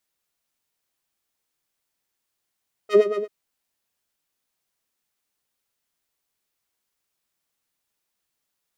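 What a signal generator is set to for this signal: synth patch with filter wobble G#4, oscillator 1 triangle, interval +7 st, sub -23.5 dB, filter bandpass, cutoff 280 Hz, Q 0.83, filter decay 0.12 s, filter sustain 45%, attack 85 ms, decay 0.07 s, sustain -13 dB, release 0.07 s, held 0.32 s, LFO 8.7 Hz, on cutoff 1.7 oct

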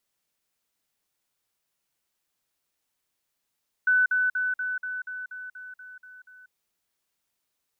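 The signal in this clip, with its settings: level ladder 1.5 kHz -17.5 dBFS, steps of -3 dB, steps 11, 0.19 s 0.05 s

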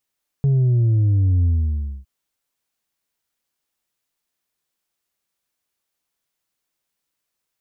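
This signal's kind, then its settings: sub drop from 140 Hz, over 1.61 s, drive 3 dB, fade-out 0.60 s, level -14 dB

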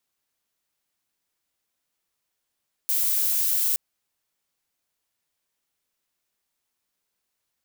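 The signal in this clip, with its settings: noise violet, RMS -23 dBFS 0.87 s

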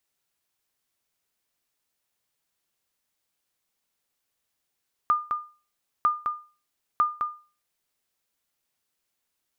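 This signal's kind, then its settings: sonar ping 1.21 kHz, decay 0.35 s, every 0.95 s, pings 3, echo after 0.21 s, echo -6 dB -14 dBFS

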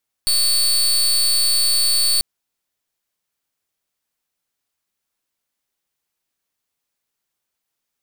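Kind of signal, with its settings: pulse 4.47 kHz, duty 29% -16.5 dBFS 1.94 s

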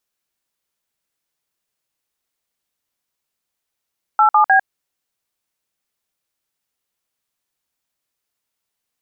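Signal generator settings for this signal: DTMF "87B", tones 100 ms, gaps 53 ms, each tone -11.5 dBFS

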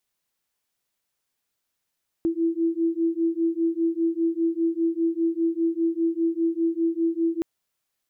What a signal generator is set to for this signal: beating tones 329 Hz, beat 5 Hz, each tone -24 dBFS 5.17 s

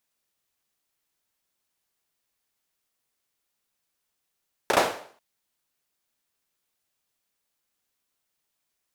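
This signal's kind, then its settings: hand clap length 0.49 s, bursts 3, apart 34 ms, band 600 Hz, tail 0.50 s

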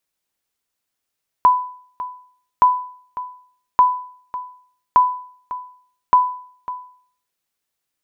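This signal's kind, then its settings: sonar ping 998 Hz, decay 0.54 s, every 1.17 s, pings 5, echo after 0.55 s, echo -15.5 dB -5 dBFS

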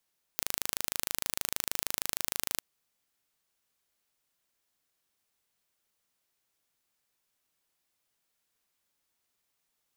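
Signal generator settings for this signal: pulse train 26.4 per s, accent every 0, -3 dBFS 2.22 s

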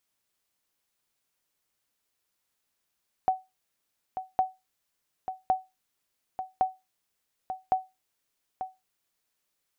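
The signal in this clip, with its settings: sonar ping 752 Hz, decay 0.22 s, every 1.11 s, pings 5, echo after 0.89 s, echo -10 dB -15.5 dBFS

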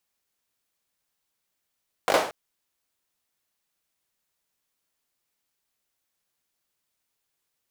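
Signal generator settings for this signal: hand clap length 0.23 s, apart 20 ms, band 620 Hz, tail 0.45 s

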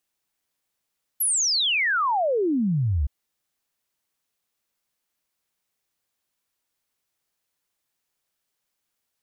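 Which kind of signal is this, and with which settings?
log sweep 12 kHz -> 64 Hz 1.87 s -19.5 dBFS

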